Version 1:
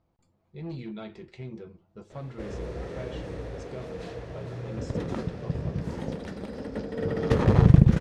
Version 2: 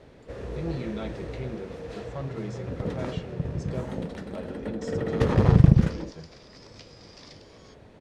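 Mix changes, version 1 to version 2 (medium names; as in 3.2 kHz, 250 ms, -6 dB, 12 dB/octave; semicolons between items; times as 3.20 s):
speech +4.0 dB; first sound: entry -2.10 s; second sound +8.0 dB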